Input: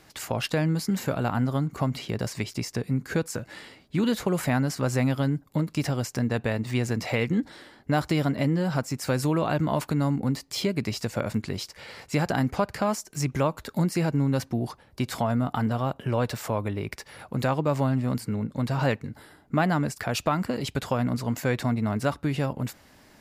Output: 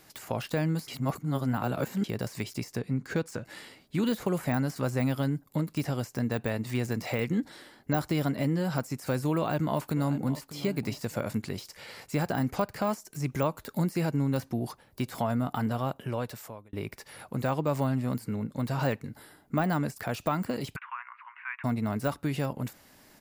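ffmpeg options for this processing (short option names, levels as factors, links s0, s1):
-filter_complex "[0:a]asettb=1/sr,asplit=3[s0][s1][s2];[s0]atrim=end=2.794[s3];[s1]atrim=start=2.79:end=3.45,asetpts=PTS-STARTPTS,afade=t=in:d=0.004:c=qsin,afade=t=out:st=0.656:d=0.004:c=qsin,adynamicsmooth=sensitivity=4.5:basefreq=6300[s4];[s2]atrim=start=3.446[s5];[s3][s4]acrossfade=d=0.004:c1=hsin:c2=qsin[s6];[s6][s5]acrossfade=d=0.004:c1=qsin:c2=hsin,asplit=2[s7][s8];[s8]afade=t=in:st=9.36:d=0.01,afade=t=out:st=10.54:d=0.01,aecho=0:1:600|1200:0.177828|0.0355656[s9];[s7][s9]amix=inputs=2:normalize=0,asettb=1/sr,asplit=3[s10][s11][s12];[s10]atrim=end=20.764[s13];[s11]atrim=start=20.76:end=21.64,asetpts=PTS-STARTPTS,afade=t=in:d=0.004:c=qsin,afade=t=out:st=0.876:d=0.004:c=qsin,asuperpass=centerf=1600:order=12:qfactor=0.96[s14];[s12]atrim=start=21.636[s15];[s13][s14]acrossfade=d=0.004:c1=hsin:c2=qsin[s16];[s16][s15]acrossfade=d=0.004:c1=qsin:c2=hsin,asplit=4[s17][s18][s19][s20];[s17]atrim=end=0.882[s21];[s18]atrim=start=0.878:end=2.042,asetpts=PTS-STARTPTS,areverse[s22];[s19]atrim=start=2.038:end=16.73,asetpts=PTS-STARTPTS,afade=t=out:st=13.852:d=0.84[s23];[s20]atrim=start=16.73,asetpts=PTS-STARTPTS,afade=t=in:d=0.004:c=hsin[s24];[s21][s22]acrossfade=d=0.004:c1=hsin:c2=hsin[s25];[s23][s24]concat=n=2:v=0:a=1[s26];[s25][s26]acrossfade=d=0.004:c1=hsin:c2=hsin,equalizer=f=62:t=o:w=0.99:g=-6.5,deesser=1,highshelf=f=9500:g=12,volume=0.708"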